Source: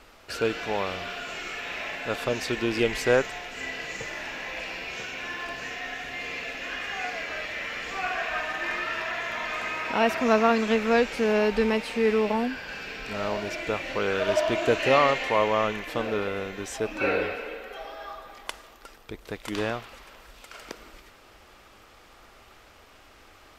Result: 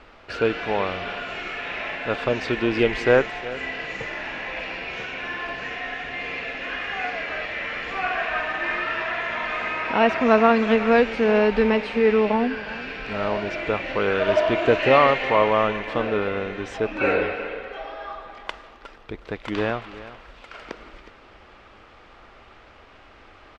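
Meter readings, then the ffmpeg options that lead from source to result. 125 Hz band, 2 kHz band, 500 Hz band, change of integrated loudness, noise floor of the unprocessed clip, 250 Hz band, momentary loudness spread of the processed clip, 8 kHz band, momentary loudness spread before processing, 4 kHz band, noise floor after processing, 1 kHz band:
+4.5 dB, +4.0 dB, +4.5 dB, +4.0 dB, −53 dBFS, +4.5 dB, 17 LU, can't be measured, 16 LU, +1.0 dB, −49 dBFS, +4.5 dB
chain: -filter_complex "[0:a]lowpass=3100,asplit=2[link_01][link_02];[link_02]aecho=0:1:365:0.15[link_03];[link_01][link_03]amix=inputs=2:normalize=0,volume=4.5dB"

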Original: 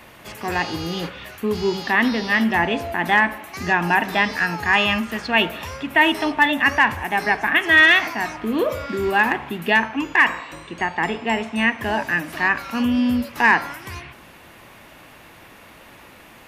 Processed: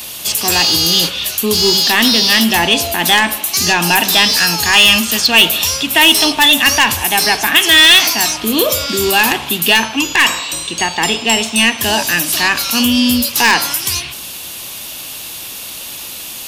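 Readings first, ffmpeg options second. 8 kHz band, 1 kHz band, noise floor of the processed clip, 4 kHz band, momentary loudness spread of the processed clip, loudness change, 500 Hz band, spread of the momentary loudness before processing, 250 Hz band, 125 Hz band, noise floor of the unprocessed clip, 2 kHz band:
+26.5 dB, +4.0 dB, −28 dBFS, +18.0 dB, 17 LU, +8.5 dB, +5.0 dB, 10 LU, +5.0 dB, +5.5 dB, −46 dBFS, +4.5 dB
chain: -af "aexciter=amount=8.2:drive=6:freq=2900,acontrast=89,volume=-1dB"

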